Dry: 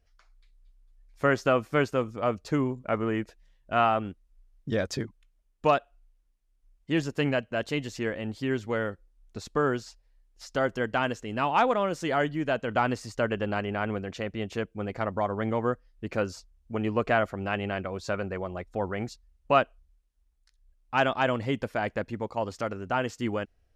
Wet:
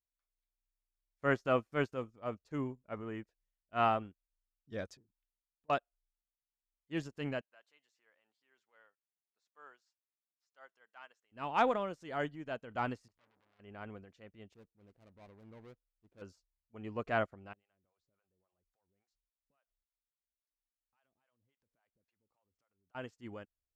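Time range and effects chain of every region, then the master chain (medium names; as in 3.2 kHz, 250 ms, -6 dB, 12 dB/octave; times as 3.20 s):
4.95–5.70 s: low-pass that closes with the level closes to 500 Hz, closed at -29.5 dBFS + compression 4:1, threshold -41 dBFS
7.41–11.32 s: high-pass 1 kHz + treble shelf 2.1 kHz -6 dB
13.08–13.60 s: low-pass 2.8 kHz + compression 2:1, threshold -30 dBFS + transformer saturation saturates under 3.5 kHz
14.54–16.22 s: median filter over 41 samples + valve stage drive 27 dB, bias 0.35
17.53–22.95 s: compression 10:1, threshold -41 dBFS + harmonic tremolo 3.6 Hz, depth 100%, crossover 580 Hz
whole clip: transient shaper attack -4 dB, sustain +5 dB; upward expansion 2.5:1, over -41 dBFS; trim -3.5 dB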